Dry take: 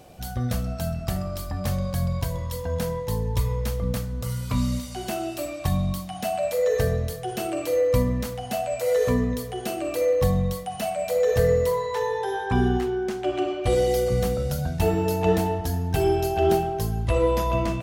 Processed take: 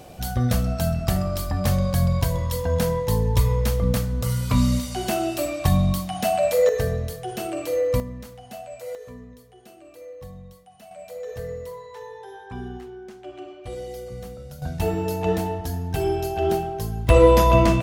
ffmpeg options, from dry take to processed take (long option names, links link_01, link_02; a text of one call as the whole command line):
ffmpeg -i in.wav -af "asetnsamples=nb_out_samples=441:pad=0,asendcmd='6.69 volume volume -1dB;8 volume volume -10.5dB;8.95 volume volume -19dB;10.91 volume volume -13dB;14.62 volume volume -2dB;17.09 volume volume 8dB',volume=5dB" out.wav